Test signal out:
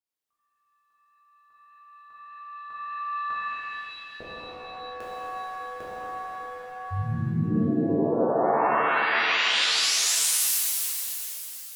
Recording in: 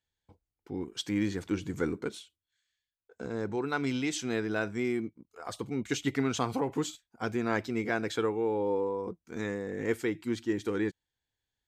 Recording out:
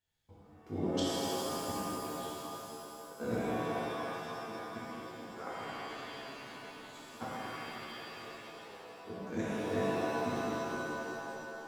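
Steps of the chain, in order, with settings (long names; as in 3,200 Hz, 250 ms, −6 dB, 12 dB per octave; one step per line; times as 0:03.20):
gate with flip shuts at −25 dBFS, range −31 dB
reverb with rising layers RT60 3.1 s, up +7 semitones, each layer −2 dB, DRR −9.5 dB
level −4 dB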